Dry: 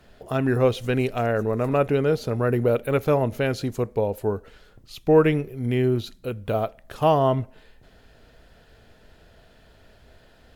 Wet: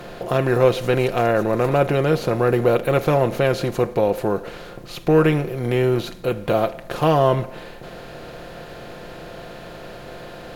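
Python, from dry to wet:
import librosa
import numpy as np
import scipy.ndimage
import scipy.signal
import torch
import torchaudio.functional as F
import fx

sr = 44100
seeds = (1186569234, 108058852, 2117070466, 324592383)

y = fx.bin_compress(x, sr, power=0.6)
y = y + 0.52 * np.pad(y, (int(5.7 * sr / 1000.0), 0))[:len(y)]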